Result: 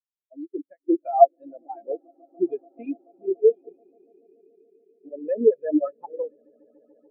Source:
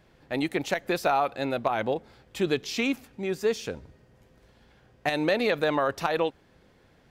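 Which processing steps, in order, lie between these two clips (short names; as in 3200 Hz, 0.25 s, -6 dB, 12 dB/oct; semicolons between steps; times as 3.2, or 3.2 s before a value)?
vibrato 0.72 Hz 62 cents; LFO low-pass sine 2.9 Hz 340–4500 Hz; on a send: swelling echo 0.144 s, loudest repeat 8, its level -12 dB; on the sum: spectral expander 4:1; gain +5.5 dB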